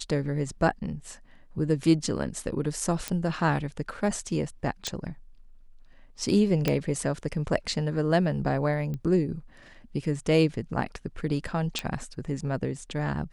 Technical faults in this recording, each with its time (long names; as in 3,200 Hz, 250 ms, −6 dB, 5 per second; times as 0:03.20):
0:03.08: click −12 dBFS
0:04.87: click −15 dBFS
0:06.68: click −10 dBFS
0:08.94: click −23 dBFS
0:11.79: click −13 dBFS